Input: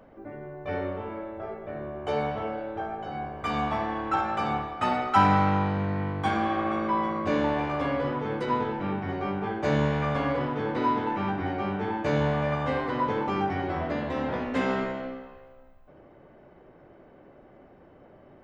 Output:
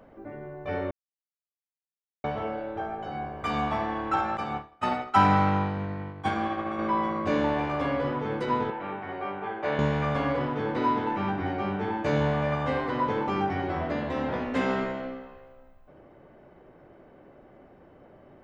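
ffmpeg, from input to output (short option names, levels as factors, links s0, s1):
-filter_complex "[0:a]asettb=1/sr,asplit=3[s0][s1][s2];[s0]atrim=end=4.374[s3];[s1]atrim=start=4.37:end=6.79,asetpts=PTS-STARTPTS,afade=t=in:d=0.004:c=qsin,afade=t=out:st=2.416:d=0.004:c=qsin,agate=range=0.0224:threshold=0.0631:ratio=3:release=100:detection=peak[s4];[s2]atrim=start=6.786[s5];[s3][s4]acrossfade=d=0.004:c1=hsin:c2=qsin[s6];[s6][s5]acrossfade=d=0.004:c1=qsin:c2=hsin,asettb=1/sr,asplit=3[s7][s8][s9];[s7]atrim=end=8.704[s10];[s8]atrim=start=8.7:end=9.79,asetpts=PTS-STARTPTS,afade=t=in:d=0.004:c=qsin,afade=t=out:st=1.086:d=0.004:c=qsin,acrossover=split=390 3800:gain=0.224 1 0.0891[s11][s12][s13];[s11][s12][s13]amix=inputs=3:normalize=0[s14];[s9]atrim=start=9.786[s15];[s10][s14]acrossfade=d=0.004:c1=hsin:c2=qsin[s16];[s16][s15]acrossfade=d=0.004:c1=qsin:c2=hsin,asplit=3[s17][s18][s19];[s17]atrim=end=0.91,asetpts=PTS-STARTPTS,afade=t=out:st=0.906:d=0.004:c=hsin[s20];[s18]atrim=start=0.91:end=2.24,asetpts=PTS-STARTPTS,volume=0[s21];[s19]atrim=start=2.24,asetpts=PTS-STARTPTS,afade=t=in:d=0.004:c=hsin[s22];[s20][s21][s22]concat=n=3:v=0:a=1"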